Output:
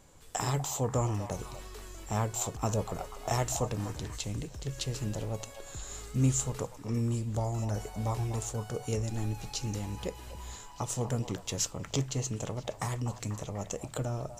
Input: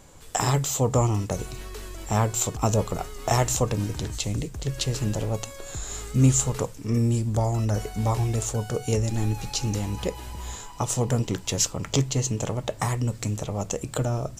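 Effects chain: delay with a stepping band-pass 0.245 s, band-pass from 800 Hz, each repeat 0.7 oct, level -8 dB; gain -8 dB

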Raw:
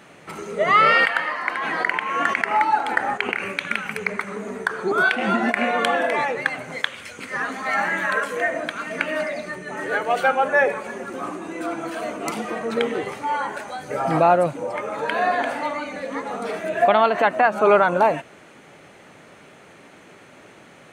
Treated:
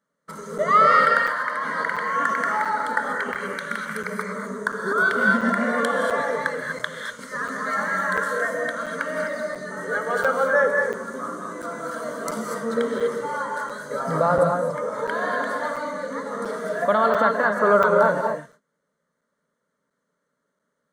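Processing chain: gate -39 dBFS, range -28 dB; fixed phaser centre 510 Hz, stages 8; non-linear reverb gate 0.27 s rising, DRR 2 dB; crackling interface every 0.69 s, samples 256, zero, from 0.58

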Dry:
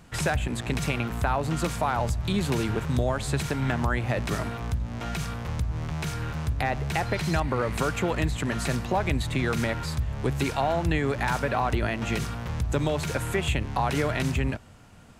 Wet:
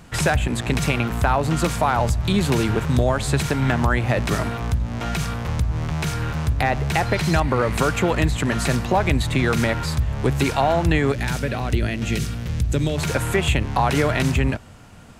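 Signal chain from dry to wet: 11.12–12.98 bell 960 Hz -13.5 dB 1.5 oct; hard clip -15 dBFS, distortion -41 dB; gain +6.5 dB

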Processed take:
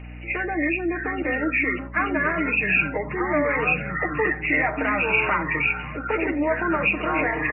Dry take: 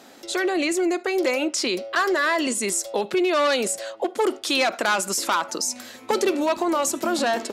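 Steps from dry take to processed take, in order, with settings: nonlinear frequency compression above 1700 Hz 4:1; echoes that change speed 0.582 s, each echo -5 st, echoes 3, each echo -6 dB; spectral gate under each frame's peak -30 dB strong; high shelf 2400 Hz +6 dB; comb 6.5 ms, depth 58%; 1.22–2.07 expander -20 dBFS; reverb, pre-delay 7 ms, DRR 13.5 dB; hum 60 Hz, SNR 14 dB; gain -5 dB

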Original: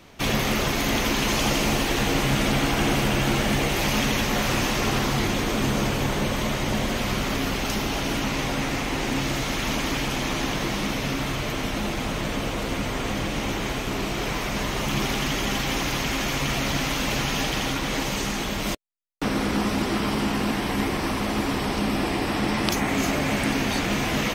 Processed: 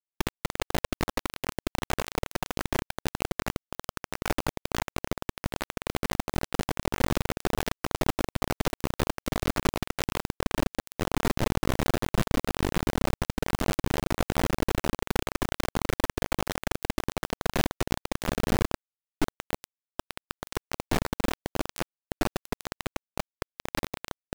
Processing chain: Schmitt trigger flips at -25.5 dBFS; bit-crush 4-bit

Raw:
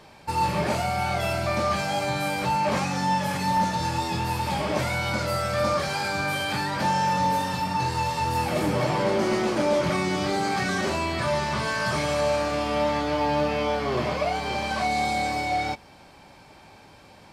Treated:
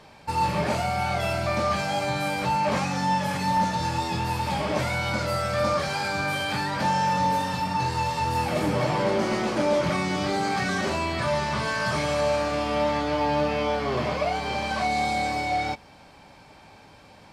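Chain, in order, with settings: high shelf 11000 Hz -6.5 dB; notch 360 Hz, Q 12

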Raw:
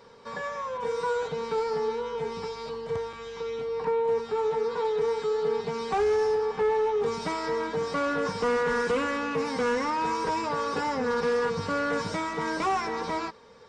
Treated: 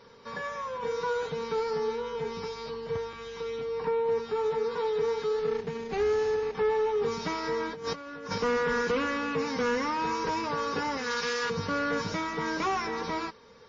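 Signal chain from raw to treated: 5.39–6.55 median filter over 41 samples; bell 710 Hz -4.5 dB 1 oct; 7.73–8.38 negative-ratio compressor -35 dBFS, ratio -0.5; 10.97–11.5 tilt shelf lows -9.5 dB, about 1200 Hz; WMA 32 kbps 16000 Hz

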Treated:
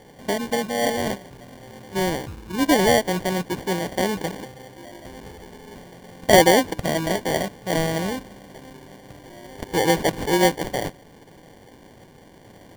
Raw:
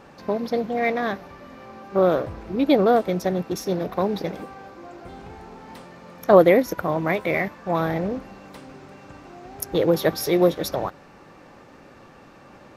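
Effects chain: 1.94–2.59 bell 710 Hz -14.5 dB 0.81 oct; sample-and-hold 34×

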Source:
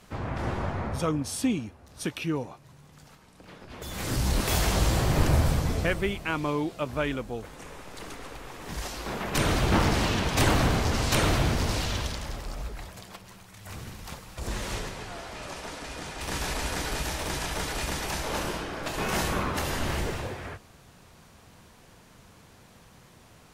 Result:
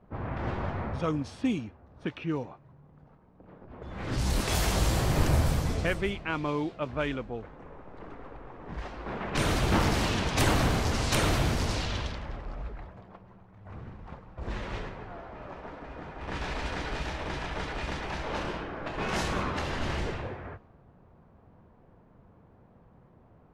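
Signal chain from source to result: low-pass opened by the level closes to 800 Hz, open at -20.5 dBFS; gain -2 dB

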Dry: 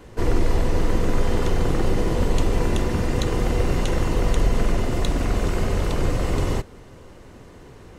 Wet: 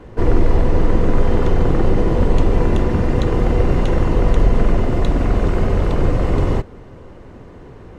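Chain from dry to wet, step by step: LPF 1400 Hz 6 dB/oct; gain +6 dB

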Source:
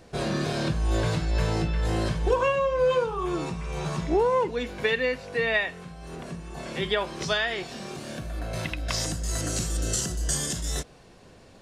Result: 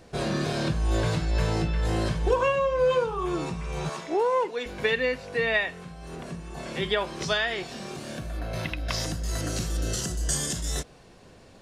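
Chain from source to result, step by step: 3.89–4.66 HPF 390 Hz 12 dB/oct; 8.37–10.04 bell 7900 Hz -8.5 dB 0.57 oct

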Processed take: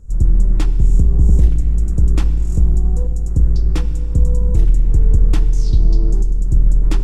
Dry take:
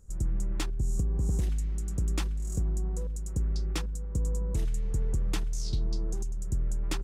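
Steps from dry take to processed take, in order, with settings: octaver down 2 oct, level -6 dB; tilt -2 dB/oct; FDN reverb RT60 2.6 s, high-frequency decay 0.7×, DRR 11.5 dB; gain +7 dB

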